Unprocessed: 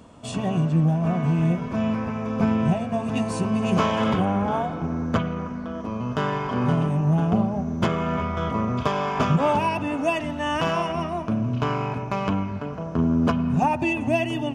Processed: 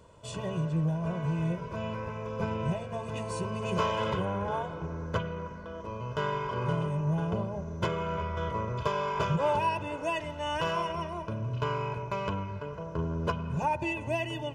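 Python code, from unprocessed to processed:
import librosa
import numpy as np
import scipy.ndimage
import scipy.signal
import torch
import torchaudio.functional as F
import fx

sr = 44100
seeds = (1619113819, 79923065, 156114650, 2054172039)

y = x + 0.8 * np.pad(x, (int(2.0 * sr / 1000.0), 0))[:len(x)]
y = F.gain(torch.from_numpy(y), -8.5).numpy()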